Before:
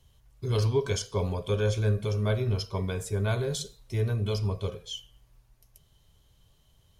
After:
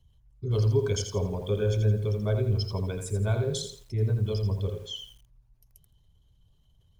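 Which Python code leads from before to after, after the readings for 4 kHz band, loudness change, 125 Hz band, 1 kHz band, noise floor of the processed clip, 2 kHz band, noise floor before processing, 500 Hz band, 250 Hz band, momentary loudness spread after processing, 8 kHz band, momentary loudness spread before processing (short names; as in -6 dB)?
-0.5 dB, +1.0 dB, +2.0 dB, -4.0 dB, -64 dBFS, -4.5 dB, -64 dBFS, +0.5 dB, +0.5 dB, 10 LU, 0.0 dB, 9 LU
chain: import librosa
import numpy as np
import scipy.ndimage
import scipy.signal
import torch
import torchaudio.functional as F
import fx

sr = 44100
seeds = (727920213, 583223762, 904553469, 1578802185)

y = fx.envelope_sharpen(x, sr, power=1.5)
y = fx.echo_crushed(y, sr, ms=83, feedback_pct=35, bits=9, wet_db=-7.0)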